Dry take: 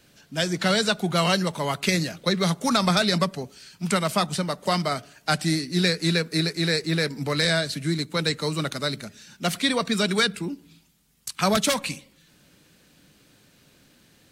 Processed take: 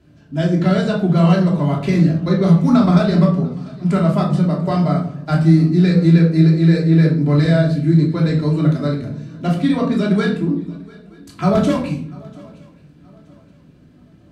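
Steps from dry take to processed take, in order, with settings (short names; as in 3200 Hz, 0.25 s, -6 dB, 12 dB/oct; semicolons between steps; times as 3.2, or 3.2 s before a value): HPF 82 Hz; tilt -4.5 dB/oct; swung echo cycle 0.924 s, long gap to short 3:1, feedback 31%, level -23.5 dB; shoebox room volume 640 m³, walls furnished, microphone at 3 m; gain -3.5 dB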